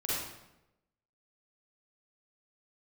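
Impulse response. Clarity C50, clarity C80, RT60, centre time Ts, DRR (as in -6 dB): -4.0 dB, 1.5 dB, 0.90 s, 86 ms, -8.5 dB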